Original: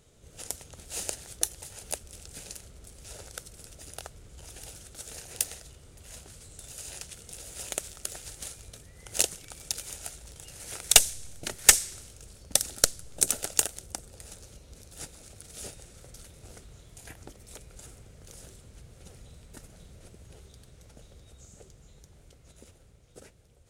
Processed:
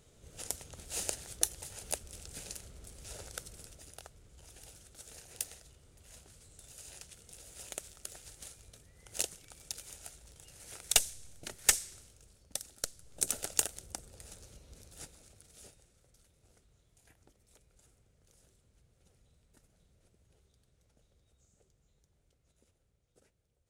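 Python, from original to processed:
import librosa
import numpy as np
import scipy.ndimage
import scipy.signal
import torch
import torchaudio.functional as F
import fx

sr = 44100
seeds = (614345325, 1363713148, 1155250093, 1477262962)

y = fx.gain(x, sr, db=fx.line((3.55, -2.0), (3.96, -9.0), (11.94, -9.0), (12.75, -16.5), (13.38, -5.0), (14.86, -5.0), (16.01, -18.0)))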